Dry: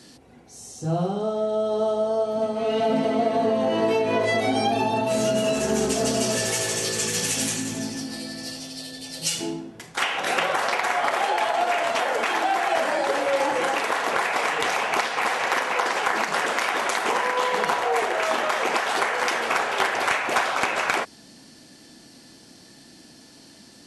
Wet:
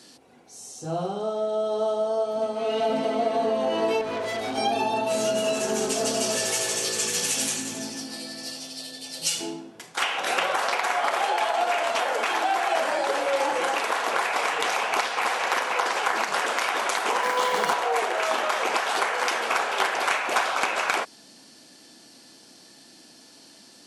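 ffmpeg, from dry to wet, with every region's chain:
-filter_complex "[0:a]asettb=1/sr,asplit=3[a][b][c];[a]atrim=end=4.014[d];[b]atrim=start=4.01:end=4.58,asetpts=PTS-STARTPTS,afade=t=in:d=0.004:c=qsin,afade=t=out:st=0.566:d=0.004:c=qsin,bandreject=f=2.7k:w=5.9,aeval=exprs='(tanh(15.8*val(0)+0.4)-tanh(0.4))/15.8':c=same,lowshelf=f=93:g=11.5[e];[c]atrim=start=4.576[f];[d][e]acrossfade=d=0.004:c1=hsin:c2=qsin[g];[g][f]acrossfade=d=0.004:c1=qsin:c2=hsin,asettb=1/sr,asplit=3[h][i][j];[h]atrim=end=17.234[k];[i]atrim=start=17.23:end=17.73,asetpts=PTS-STARTPTS,afade=t=in:d=0.004:c=qsin,afade=t=out:st=0.496:d=0.004:c=qsin,aeval=exprs='val(0)+0.5*0.0168*sgn(val(0))':c=same,bass=f=250:g=6,treble=f=4k:g=2,bandreject=f=2.6k:w=14[l];[j]atrim=start=17.726[m];[k][l]acrossfade=d=0.004:c1=hsin:c2=qsin[n];[n][m]acrossfade=d=0.004:c1=qsin:c2=hsin,highpass=f=410:p=1,equalizer=f=1.9k:w=3.8:g=-3.5"

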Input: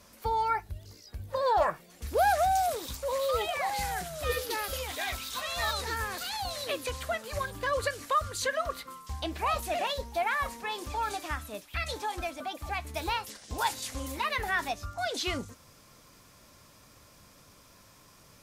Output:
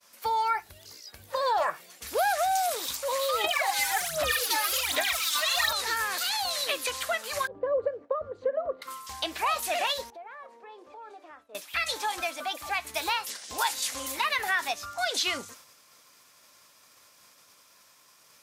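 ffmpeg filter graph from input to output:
-filter_complex "[0:a]asettb=1/sr,asplit=3[a][b][c];[a]atrim=end=3.444[d];[b]atrim=start=3.44:end=5.73,asetpts=PTS-STARTPTS,afade=t=in:d=0.004:c=qsin,afade=t=out:st=2.286:d=0.004:c=qsin,equalizer=f=460:t=o:w=0.21:g=-7,aphaser=in_gain=1:out_gain=1:delay=3.4:decay=0.77:speed=1.3:type=sinusoidal[e];[c]atrim=start=5.726[f];[d][e]acrossfade=d=0.004:c1=hsin:c2=qsin[g];[g][f]acrossfade=d=0.004:c1=qsin:c2=hsin,asettb=1/sr,asplit=3[h][i][j];[h]atrim=end=7.474[k];[i]atrim=start=7.47:end=8.82,asetpts=PTS-STARTPTS,afade=t=in:d=0.004:c=qsin,afade=t=out:st=1.346:d=0.004:c=qsin,agate=range=-33dB:threshold=-40dB:ratio=3:release=100:detection=peak,lowpass=f=510:t=q:w=2.7[l];[j]atrim=start=8.816[m];[k][l]acrossfade=d=0.004:c1=hsin:c2=qsin[n];[n][m]acrossfade=d=0.004:c1=qsin:c2=hsin,asettb=1/sr,asplit=3[o][p][q];[o]atrim=end=10.104[r];[p]atrim=start=10.1:end=11.55,asetpts=PTS-STARTPTS,afade=t=in:d=0.004:c=qsin,afade=t=out:st=1.446:d=0.004:c=qsin,bandpass=f=450:t=q:w=1.9,acompressor=threshold=-47dB:ratio=3:attack=3.2:release=140:knee=1:detection=peak[s];[q]atrim=start=11.546[t];[r][s]acrossfade=d=0.004:c1=hsin:c2=qsin[u];[u][t]acrossfade=d=0.004:c1=qsin:c2=hsin,agate=range=-33dB:threshold=-50dB:ratio=3:detection=peak,highpass=f=1.2k:p=1,acompressor=threshold=-33dB:ratio=2.5,volume=8.5dB"

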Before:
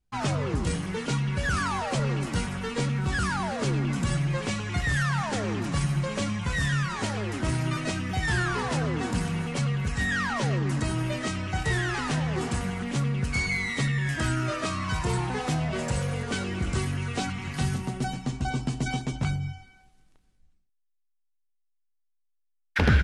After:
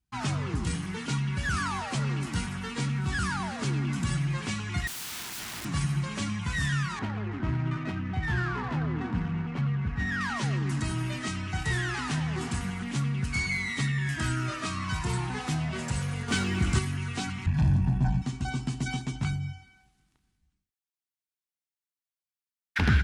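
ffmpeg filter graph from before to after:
-filter_complex "[0:a]asettb=1/sr,asplit=3[a][b][c];[a]atrim=end=4.874[d];[b]atrim=start=4.87:end=5.65,asetpts=PTS-STARTPTS,afade=t=in:d=0.004:c=qsin,afade=t=out:st=0.776:d=0.004:c=qsin,equalizer=f=530:t=o:w=0.99:g=-14.5,aeval=exprs='(mod(35.5*val(0)+1,2)-1)/35.5':c=same[e];[c]atrim=start=5.646[f];[d][e]acrossfade=d=0.004:c1=hsin:c2=qsin[g];[g][f]acrossfade=d=0.004:c1=qsin:c2=hsin,asettb=1/sr,asplit=3[h][i][j];[h]atrim=end=6.994[k];[i]atrim=start=6.99:end=10.21,asetpts=PTS-STARTPTS,afade=t=in:d=0.004:c=qsin,afade=t=out:st=3.216:d=0.004:c=qsin,aemphasis=mode=reproduction:type=75fm,adynamicsmooth=sensitivity=3.5:basefreq=2k[l];[j]atrim=start=10.206[m];[k][l]acrossfade=d=0.004:c1=hsin:c2=qsin[n];[n][m]acrossfade=d=0.004:c1=qsin:c2=hsin,asettb=1/sr,asplit=3[o][p][q];[o]atrim=end=16.284[r];[p]atrim=start=16.28:end=16.79,asetpts=PTS-STARTPTS,afade=t=in:d=0.004:c=qsin,afade=t=out:st=0.506:d=0.004:c=qsin,aeval=exprs='sgn(val(0))*max(abs(val(0))-0.00126,0)':c=same,acontrast=38[s];[q]atrim=start=16.786[t];[r][s]acrossfade=d=0.004:c1=hsin:c2=qsin[u];[u][t]acrossfade=d=0.004:c1=qsin:c2=hsin,asettb=1/sr,asplit=3[v][w][x];[v]atrim=end=17.464[y];[w]atrim=start=17.46:end=18.22,asetpts=PTS-STARTPTS,afade=t=in:d=0.004:c=qsin,afade=t=out:st=0.756:d=0.004:c=qsin,aemphasis=mode=reproduction:type=riaa,aeval=exprs='(tanh(11.2*val(0)+0.5)-tanh(0.5))/11.2':c=same,aecho=1:1:1.2:0.76,atrim=end_sample=33516[z];[x]atrim=start=18.216[aa];[y][z]acrossfade=d=0.004:c1=hsin:c2=qsin[ab];[ab][aa]acrossfade=d=0.004:c1=qsin:c2=hsin,highpass=46,equalizer=f=530:w=2.1:g=-12.5,bandreject=f=398.5:t=h:w=4,bandreject=f=797:t=h:w=4,bandreject=f=1.1955k:t=h:w=4,bandreject=f=1.594k:t=h:w=4,bandreject=f=1.9925k:t=h:w=4,bandreject=f=2.391k:t=h:w=4,bandreject=f=2.7895k:t=h:w=4,bandreject=f=3.188k:t=h:w=4,bandreject=f=3.5865k:t=h:w=4,bandreject=f=3.985k:t=h:w=4,bandreject=f=4.3835k:t=h:w=4,bandreject=f=4.782k:t=h:w=4,bandreject=f=5.1805k:t=h:w=4,bandreject=f=5.579k:t=h:w=4,bandreject=f=5.9775k:t=h:w=4,bandreject=f=6.376k:t=h:w=4,bandreject=f=6.7745k:t=h:w=4,bandreject=f=7.173k:t=h:w=4,bandreject=f=7.5715k:t=h:w=4,bandreject=f=7.97k:t=h:w=4,bandreject=f=8.3685k:t=h:w=4,bandreject=f=8.767k:t=h:w=4,bandreject=f=9.1655k:t=h:w=4,bandreject=f=9.564k:t=h:w=4,bandreject=f=9.9625k:t=h:w=4,bandreject=f=10.361k:t=h:w=4,bandreject=f=10.7595k:t=h:w=4,bandreject=f=11.158k:t=h:w=4,bandreject=f=11.5565k:t=h:w=4,bandreject=f=11.955k:t=h:w=4,bandreject=f=12.3535k:t=h:w=4,bandreject=f=12.752k:t=h:w=4,bandreject=f=13.1505k:t=h:w=4,bandreject=f=13.549k:t=h:w=4,bandreject=f=13.9475k:t=h:w=4,bandreject=f=14.346k:t=h:w=4,bandreject=f=14.7445k:t=h:w=4,bandreject=f=15.143k:t=h:w=4,volume=-1.5dB"

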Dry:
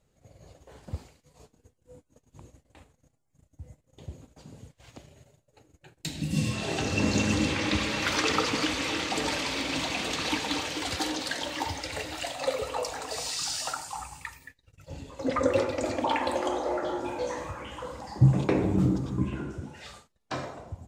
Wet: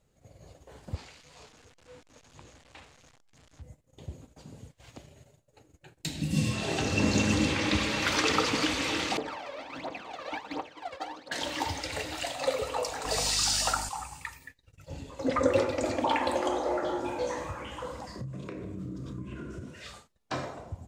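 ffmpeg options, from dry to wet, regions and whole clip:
-filter_complex "[0:a]asettb=1/sr,asplit=3[a][b][c];[a]atrim=end=0.954[d];[b]atrim=start=0.95:end=3.62,asetpts=PTS-STARTPTS,afade=t=in:d=0.004:c=qsin,afade=t=out:st=2.666:d=0.004:c=qsin,aeval=exprs='val(0)+0.5*0.00282*sgn(val(0))':c=same,lowpass=5k,tiltshelf=f=730:g=-7[e];[c]atrim=start=3.616[f];[d][e]acrossfade=d=0.004:c1=hsin:c2=qsin[g];[g][f]acrossfade=d=0.004:c1=qsin:c2=hsin,asettb=1/sr,asplit=3[h][i][j];[h]atrim=end=9.174[k];[i]atrim=start=9.17:end=11.32,asetpts=PTS-STARTPTS,afade=t=in:d=0.004:c=qsin,afade=t=out:st=2.146:d=0.004:c=qsin,agate=range=-33dB:threshold=-27dB:ratio=3:release=100:detection=peak,bandpass=f=720:t=q:w=1.1,aphaser=in_gain=1:out_gain=1:delay=1.9:decay=0.7:speed=1.4:type=triangular[l];[j]atrim=start=11.316[m];[k][l]acrossfade=d=0.004:c1=hsin:c2=qsin[n];[n][m]acrossfade=d=0.004:c1=qsin:c2=hsin,asettb=1/sr,asplit=3[o][p][q];[o]atrim=end=13.054[r];[p]atrim=start=13.05:end=13.89,asetpts=PTS-STARTPTS,afade=t=in:d=0.004:c=qsin,afade=t=out:st=0.836:d=0.004:c=qsin,acontrast=24,aeval=exprs='val(0)+0.01*(sin(2*PI*50*n/s)+sin(2*PI*2*50*n/s)/2+sin(2*PI*3*50*n/s)/3+sin(2*PI*4*50*n/s)/4+sin(2*PI*5*50*n/s)/5)':c=same[s];[q]atrim=start=13.886[t];[r][s]acrossfade=d=0.004:c1=hsin:c2=qsin[u];[u][t]acrossfade=d=0.004:c1=qsin:c2=hsin,asettb=1/sr,asplit=3[v][w][x];[v]atrim=end=18.054[y];[w]atrim=start=18.05:end=19.91,asetpts=PTS-STARTPTS,afade=t=in:d=0.004:c=qsin,afade=t=out:st=1.856:d=0.004:c=qsin,acompressor=threshold=-35dB:ratio=16:attack=3.2:release=140:knee=1:detection=peak,asuperstop=centerf=820:order=4:qfactor=3.1,asplit=2[z][aa];[aa]adelay=32,volume=-11dB[ab];[z][ab]amix=inputs=2:normalize=0,atrim=end_sample=82026[ac];[x]atrim=start=19.906[ad];[y][ac]acrossfade=d=0.004:c1=hsin:c2=qsin[ae];[ae][ad]acrossfade=d=0.004:c1=qsin:c2=hsin"

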